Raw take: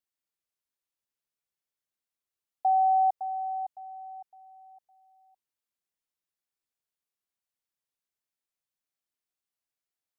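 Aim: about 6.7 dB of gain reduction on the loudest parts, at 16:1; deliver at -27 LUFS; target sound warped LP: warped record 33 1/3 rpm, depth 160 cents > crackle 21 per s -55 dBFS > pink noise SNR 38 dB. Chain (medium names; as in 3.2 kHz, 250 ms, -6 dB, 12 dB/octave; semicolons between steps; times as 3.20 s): compression 16:1, threshold -27 dBFS; warped record 33 1/3 rpm, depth 160 cents; crackle 21 per s -55 dBFS; pink noise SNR 38 dB; trim +6.5 dB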